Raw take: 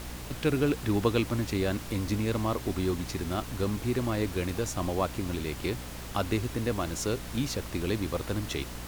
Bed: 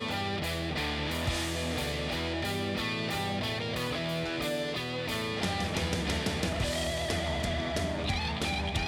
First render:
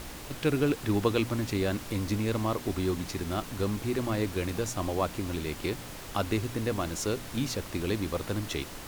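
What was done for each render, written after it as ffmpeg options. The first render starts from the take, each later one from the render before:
-af "bandreject=f=60:t=h:w=4,bandreject=f=120:t=h:w=4,bandreject=f=180:t=h:w=4,bandreject=f=240:t=h:w=4"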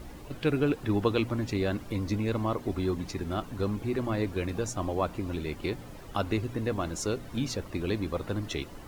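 -af "afftdn=nr=12:nf=-43"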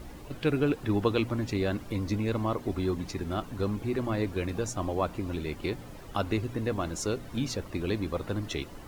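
-af anull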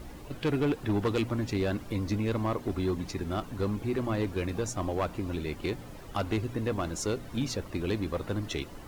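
-af "asoftclip=type=hard:threshold=0.075"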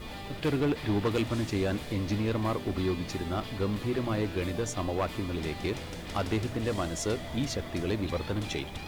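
-filter_complex "[1:a]volume=0.316[s0];[0:a][s0]amix=inputs=2:normalize=0"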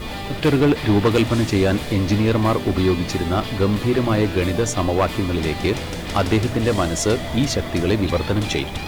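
-af "volume=3.76"

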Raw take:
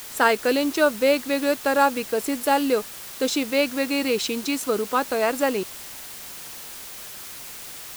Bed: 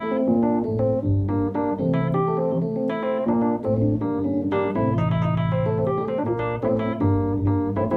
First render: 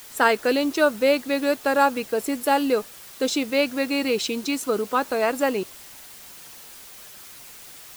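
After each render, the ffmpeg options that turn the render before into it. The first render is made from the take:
-af "afftdn=nr=6:nf=-39"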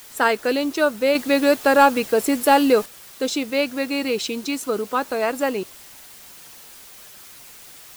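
-filter_complex "[0:a]asettb=1/sr,asplit=3[s0][s1][s2];[s0]atrim=end=1.154[s3];[s1]atrim=start=1.15:end=2.86,asetpts=PTS-STARTPTS,afade=t=in:d=0.004:c=qsin,afade=t=out:st=1.706:d=0.004:c=qsin,acontrast=50[s4];[s2]atrim=start=2.856[s5];[s3][s4]acrossfade=d=0.004:c1=hsin:c2=qsin[s6];[s6][s5]acrossfade=d=0.004:c1=qsin:c2=hsin"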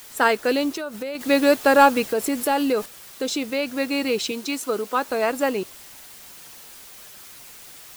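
-filter_complex "[0:a]asettb=1/sr,asplit=3[s0][s1][s2];[s0]atrim=end=0.724[s3];[s1]atrim=start=0.72:end=1.21,asetpts=PTS-STARTPTS,afade=t=in:d=0.004:c=qsin,afade=t=out:st=0.486:d=0.004:c=qsin,acompressor=threshold=0.0501:ratio=10:attack=3.2:release=140:knee=1:detection=peak[s4];[s2]atrim=start=1.206[s5];[s3][s4]acrossfade=d=0.004:c1=hsin:c2=qsin[s6];[s6][s5]acrossfade=d=0.004:c1=qsin:c2=hsin,asettb=1/sr,asplit=3[s7][s8][s9];[s7]atrim=end=2.044[s10];[s8]atrim=start=2.04:end=3.78,asetpts=PTS-STARTPTS,afade=t=in:d=0.004:c=qsin,afade=t=out:st=1.736:d=0.004:c=qsin,acompressor=threshold=0.0794:ratio=2:attack=3.2:release=140:knee=1:detection=peak[s11];[s9]atrim=start=3.776[s12];[s10][s11]acrossfade=d=0.004:c1=hsin:c2=qsin[s13];[s13][s12]acrossfade=d=0.004:c1=qsin:c2=hsin,asettb=1/sr,asplit=3[s14][s15][s16];[s14]atrim=end=4.314[s17];[s15]atrim=start=4.31:end=5.09,asetpts=PTS-STARTPTS,afade=t=in:d=0.004:c=qsin,afade=t=out:st=0.776:d=0.004:c=qsin,highpass=f=250:p=1[s18];[s16]atrim=start=5.086[s19];[s17][s18]acrossfade=d=0.004:c1=hsin:c2=qsin[s20];[s20][s19]acrossfade=d=0.004:c1=qsin:c2=hsin"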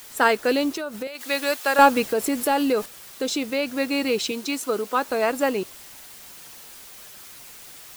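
-filter_complex "[0:a]asettb=1/sr,asplit=3[s0][s1][s2];[s0]atrim=end=1.074[s3];[s1]atrim=start=1.07:end=1.79,asetpts=PTS-STARTPTS,afade=t=in:d=0.004:c=qsin,afade=t=out:st=0.716:d=0.004:c=qsin,highpass=f=1300:p=1[s4];[s2]atrim=start=1.786[s5];[s3][s4]acrossfade=d=0.004:c1=hsin:c2=qsin[s6];[s6][s5]acrossfade=d=0.004:c1=qsin:c2=hsin"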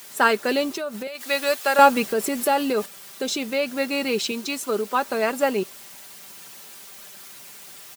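-af "highpass=95,aecho=1:1:5.1:0.41"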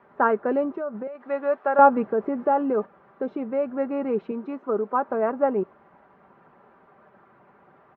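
-af "lowpass=f=1300:w=0.5412,lowpass=f=1300:w=1.3066,lowshelf=f=64:g=-6"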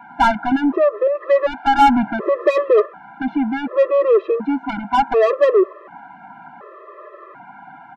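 -filter_complex "[0:a]asplit=2[s0][s1];[s1]highpass=f=720:p=1,volume=28.2,asoftclip=type=tanh:threshold=0.75[s2];[s0][s2]amix=inputs=2:normalize=0,lowpass=f=1600:p=1,volume=0.501,afftfilt=real='re*gt(sin(2*PI*0.68*pts/sr)*(1-2*mod(floor(b*sr/1024/340),2)),0)':imag='im*gt(sin(2*PI*0.68*pts/sr)*(1-2*mod(floor(b*sr/1024/340),2)),0)':win_size=1024:overlap=0.75"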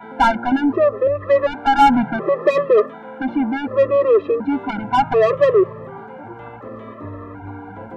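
-filter_complex "[1:a]volume=0.224[s0];[0:a][s0]amix=inputs=2:normalize=0"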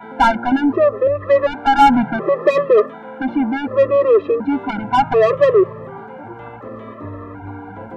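-af "volume=1.19"

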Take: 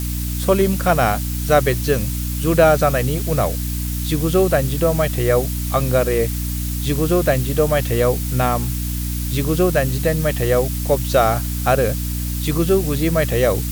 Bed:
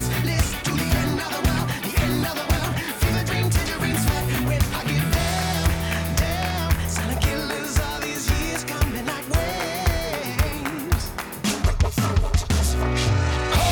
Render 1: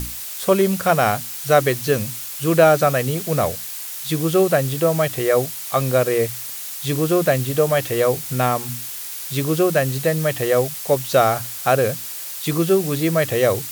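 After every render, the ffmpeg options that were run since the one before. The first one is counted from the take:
-af "bandreject=f=60:t=h:w=6,bandreject=f=120:t=h:w=6,bandreject=f=180:t=h:w=6,bandreject=f=240:t=h:w=6,bandreject=f=300:t=h:w=6"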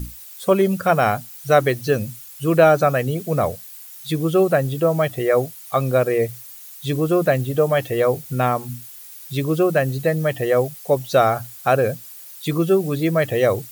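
-af "afftdn=nr=13:nf=-31"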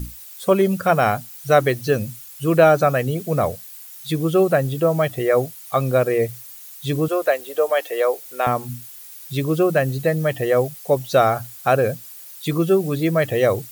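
-filter_complex "[0:a]asettb=1/sr,asplit=3[s0][s1][s2];[s0]atrim=end=7.084[s3];[s1]atrim=start=7.08:end=8.47,asetpts=PTS-STARTPTS,afade=t=in:d=0.004:c=qsin,afade=t=out:st=1.386:d=0.004:c=qsin,highpass=f=420:w=0.5412,highpass=f=420:w=1.3066[s4];[s2]atrim=start=8.466[s5];[s3][s4]acrossfade=d=0.004:c1=hsin:c2=qsin[s6];[s6][s5]acrossfade=d=0.004:c1=qsin:c2=hsin"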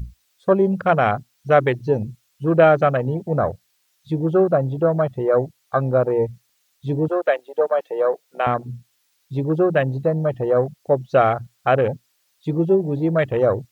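-filter_complex "[0:a]acrossover=split=6400[s0][s1];[s1]acompressor=threshold=0.00282:ratio=4:attack=1:release=60[s2];[s0][s2]amix=inputs=2:normalize=0,afwtdn=0.0631"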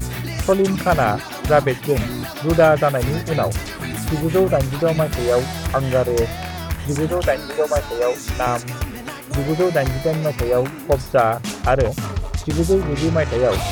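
-filter_complex "[1:a]volume=0.631[s0];[0:a][s0]amix=inputs=2:normalize=0"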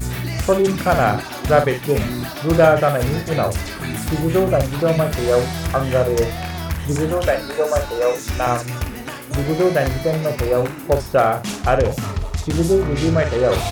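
-filter_complex "[0:a]asplit=2[s0][s1];[s1]adelay=49,volume=0.398[s2];[s0][s2]amix=inputs=2:normalize=0"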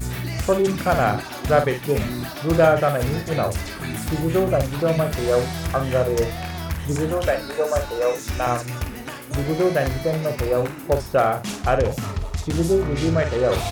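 -af "volume=0.708"

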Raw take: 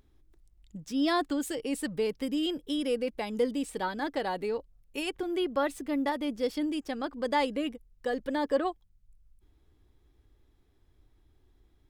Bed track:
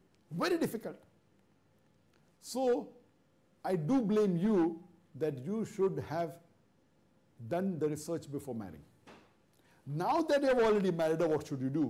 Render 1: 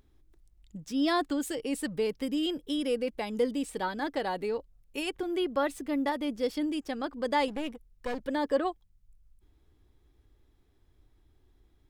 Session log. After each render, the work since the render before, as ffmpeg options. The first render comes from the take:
-filter_complex "[0:a]asettb=1/sr,asplit=3[s0][s1][s2];[s0]atrim=end=7.484[s3];[s1]atrim=start=7.48:end=8.2,asetpts=PTS-STARTPTS,afade=t=in:d=0.004:c=qsin,afade=t=out:st=0.716:d=0.004:c=qsin,aeval=exprs='clip(val(0),-1,0.00891)':c=same[s4];[s2]atrim=start=8.196[s5];[s3][s4]acrossfade=d=0.004:c1=hsin:c2=qsin[s6];[s6][s5]acrossfade=d=0.004:c1=qsin:c2=hsin"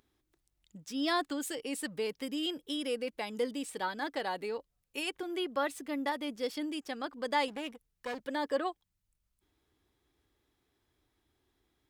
-af "highpass=f=370:p=1,equalizer=f=490:w=0.64:g=-3"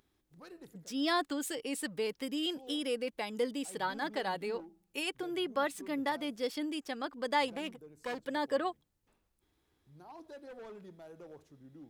-filter_complex "[1:a]volume=0.0944[s0];[0:a][s0]amix=inputs=2:normalize=0"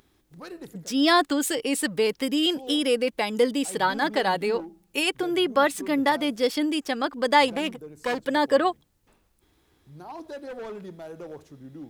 -af "volume=3.76"

